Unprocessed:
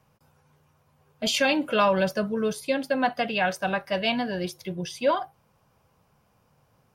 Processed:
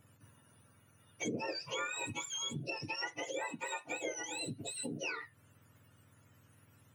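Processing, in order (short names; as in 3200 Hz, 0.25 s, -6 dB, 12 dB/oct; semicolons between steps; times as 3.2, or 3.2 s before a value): spectrum mirrored in octaves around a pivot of 1200 Hz; 3.44–3.9 HPF 270 Hz 12 dB/oct; compressor 4:1, threshold -40 dBFS, peak gain reduction 19 dB; gain +1 dB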